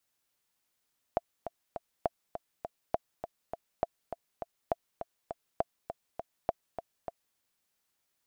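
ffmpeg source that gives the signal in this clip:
ffmpeg -f lavfi -i "aevalsrc='pow(10,(-14-9.5*gte(mod(t,3*60/203),60/203))/20)*sin(2*PI*678*mod(t,60/203))*exp(-6.91*mod(t,60/203)/0.03)':duration=6.2:sample_rate=44100" out.wav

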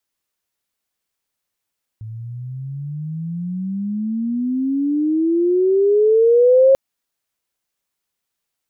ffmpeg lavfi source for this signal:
ffmpeg -f lavfi -i "aevalsrc='pow(10,(-7.5+21*(t/4.74-1))/20)*sin(2*PI*108*4.74/(28*log(2)/12)*(exp(28*log(2)/12*t/4.74)-1))':duration=4.74:sample_rate=44100" out.wav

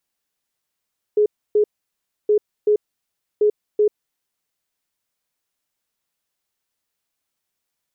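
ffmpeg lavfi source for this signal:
ffmpeg -f lavfi -i "aevalsrc='0.251*sin(2*PI*420*t)*clip(min(mod(mod(t,1.12),0.38),0.09-mod(mod(t,1.12),0.38))/0.005,0,1)*lt(mod(t,1.12),0.76)':duration=3.36:sample_rate=44100" out.wav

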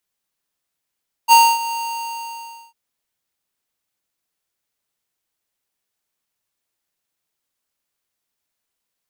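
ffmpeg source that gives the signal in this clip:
ffmpeg -f lavfi -i "aevalsrc='0.398*(2*lt(mod(925*t,1),0.5)-1)':duration=1.45:sample_rate=44100,afade=type=in:duration=0.042,afade=type=out:start_time=0.042:duration=0.258:silence=0.158,afade=type=out:start_time=0.44:duration=1.01" out.wav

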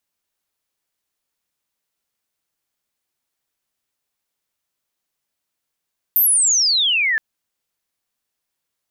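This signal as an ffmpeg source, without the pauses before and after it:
ffmpeg -f lavfi -i "aevalsrc='pow(10,(-11.5-4*t/1.02)/20)*sin(2*PI*14000*1.02/log(1700/14000)*(exp(log(1700/14000)*t/1.02)-1))':duration=1.02:sample_rate=44100" out.wav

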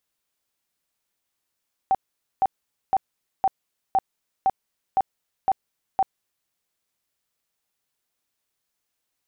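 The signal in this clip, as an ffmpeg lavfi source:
ffmpeg -f lavfi -i "aevalsrc='0.168*sin(2*PI*771*mod(t,0.51))*lt(mod(t,0.51),29/771)':duration=4.59:sample_rate=44100" out.wav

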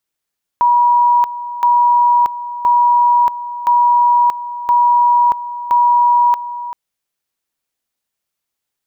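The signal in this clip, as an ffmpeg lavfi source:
ffmpeg -f lavfi -i "aevalsrc='pow(10,(-8-14*gte(mod(t,1.02),0.63))/20)*sin(2*PI*964*t)':duration=6.12:sample_rate=44100" out.wav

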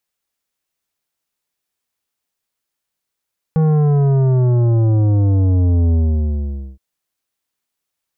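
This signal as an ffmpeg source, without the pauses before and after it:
ffmpeg -f lavfi -i "aevalsrc='0.251*clip((3.22-t)/0.85,0,1)*tanh(3.55*sin(2*PI*160*3.22/log(65/160)*(exp(log(65/160)*t/3.22)-1)))/tanh(3.55)':duration=3.22:sample_rate=44100" out.wav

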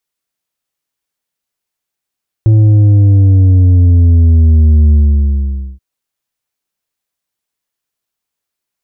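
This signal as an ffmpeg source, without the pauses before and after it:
ffmpeg -f lavfi -i "aevalsrc='0.596*clip((3.33-t)/0.87,0,1)*tanh(2*sin(2*PI*110*3.33/log(65/110)*(exp(log(65/110)*t/3.33)-1)))/tanh(2)':duration=3.33:sample_rate=44100" out.wav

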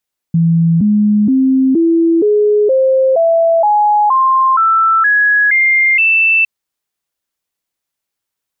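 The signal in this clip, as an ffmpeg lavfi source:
ffmpeg -f lavfi -i "aevalsrc='0.422*clip(min(mod(t,0.47),0.47-mod(t,0.47))/0.005,0,1)*sin(2*PI*166*pow(2,floor(t/0.47)/3)*mod(t,0.47))':duration=6.11:sample_rate=44100" out.wav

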